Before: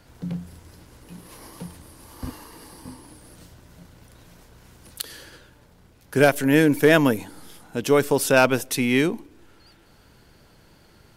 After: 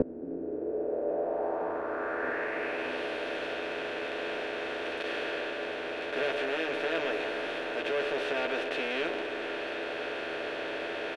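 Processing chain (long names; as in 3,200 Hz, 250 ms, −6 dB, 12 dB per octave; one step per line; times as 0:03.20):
compressor on every frequency bin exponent 0.2
low shelf with overshoot 270 Hz −10.5 dB, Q 1.5
in parallel at −8 dB: wave folding −9.5 dBFS
on the sum: low-pass filter sweep 250 Hz → 3,200 Hz, 0:00.15–0:02.99
gate with flip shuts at −12 dBFS, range −25 dB
double-tracking delay 12 ms −2.5 dB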